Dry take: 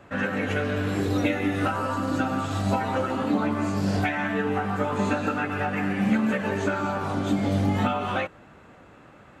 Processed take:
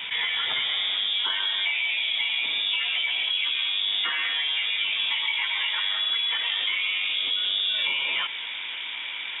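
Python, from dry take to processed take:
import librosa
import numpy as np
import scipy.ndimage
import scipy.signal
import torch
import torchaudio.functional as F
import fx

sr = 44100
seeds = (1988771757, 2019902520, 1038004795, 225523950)

y = fx.peak_eq(x, sr, hz=1300.0, db=7.5, octaves=0.26)
y = fx.freq_invert(y, sr, carrier_hz=3600)
y = fx.highpass(y, sr, hz=fx.steps((0.0, 78.0), (0.68, 280.0)), slope=12)
y = fx.env_flatten(y, sr, amount_pct=70)
y = y * 10.0 ** (-6.0 / 20.0)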